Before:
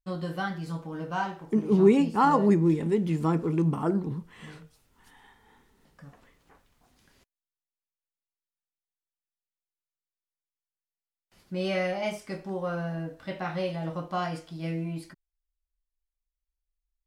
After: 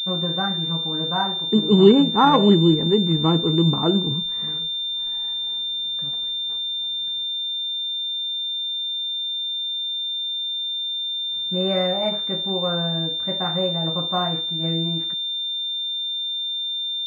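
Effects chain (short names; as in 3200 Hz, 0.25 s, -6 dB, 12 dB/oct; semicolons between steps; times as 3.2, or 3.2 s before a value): pulse-width modulation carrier 3600 Hz; gain +6.5 dB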